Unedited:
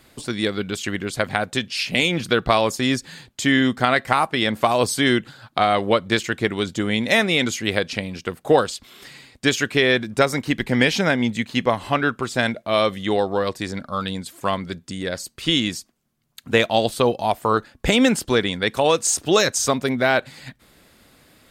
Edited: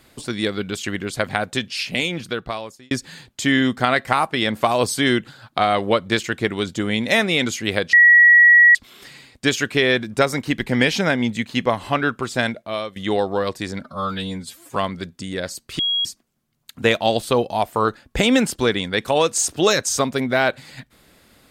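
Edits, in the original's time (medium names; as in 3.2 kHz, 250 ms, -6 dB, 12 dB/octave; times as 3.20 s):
1.65–2.91 s: fade out
7.93–8.75 s: bleep 1.92 kHz -7 dBFS
12.41–12.96 s: fade out, to -17 dB
13.83–14.45 s: stretch 1.5×
15.48–15.74 s: bleep 3.3 kHz -17.5 dBFS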